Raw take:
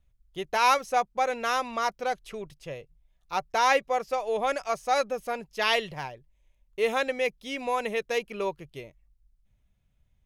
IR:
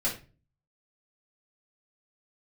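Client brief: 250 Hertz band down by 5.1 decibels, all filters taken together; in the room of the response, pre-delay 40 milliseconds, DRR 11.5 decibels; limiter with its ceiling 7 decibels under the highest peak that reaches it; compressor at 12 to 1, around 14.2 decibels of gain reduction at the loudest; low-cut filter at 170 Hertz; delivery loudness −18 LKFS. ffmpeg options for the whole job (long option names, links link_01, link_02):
-filter_complex "[0:a]highpass=170,equalizer=frequency=250:width_type=o:gain=-5,acompressor=threshold=-32dB:ratio=12,alimiter=level_in=4.5dB:limit=-24dB:level=0:latency=1,volume=-4.5dB,asplit=2[link_01][link_02];[1:a]atrim=start_sample=2205,adelay=40[link_03];[link_02][link_03]afir=irnorm=-1:irlink=0,volume=-18.5dB[link_04];[link_01][link_04]amix=inputs=2:normalize=0,volume=22dB"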